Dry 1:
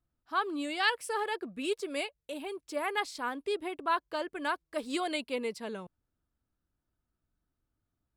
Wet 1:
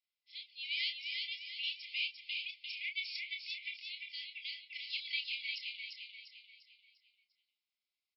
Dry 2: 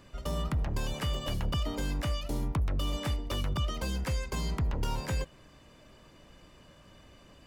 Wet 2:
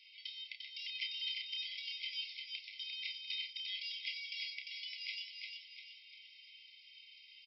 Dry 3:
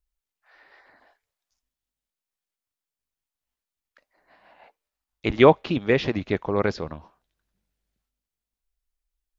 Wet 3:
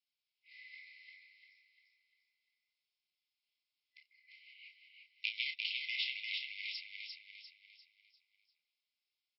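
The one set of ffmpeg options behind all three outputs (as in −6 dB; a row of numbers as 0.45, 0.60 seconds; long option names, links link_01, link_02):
-filter_complex "[0:a]asoftclip=type=hard:threshold=-18dB,acompressor=threshold=-34dB:ratio=3,afreqshift=170,afftfilt=real='re*between(b*sr/4096,2000,5500)':imag='im*between(b*sr/4096,2000,5500)':win_size=4096:overlap=0.75,asplit=2[link_01][link_02];[link_02]adelay=30,volume=-7dB[link_03];[link_01][link_03]amix=inputs=2:normalize=0,aecho=1:1:348|696|1044|1392|1740:0.631|0.271|0.117|0.0502|0.0216,volume=4dB"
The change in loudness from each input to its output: −5.5, −8.0, −17.0 LU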